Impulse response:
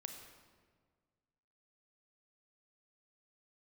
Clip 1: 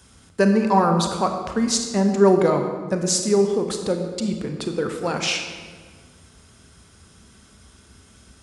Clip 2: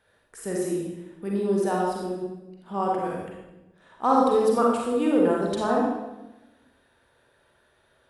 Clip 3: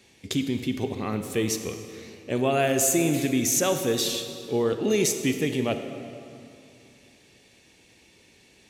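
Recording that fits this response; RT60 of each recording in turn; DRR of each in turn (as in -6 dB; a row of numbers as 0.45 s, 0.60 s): 1; 1.7 s, 1.0 s, 2.6 s; 4.5 dB, -3.0 dB, 7.5 dB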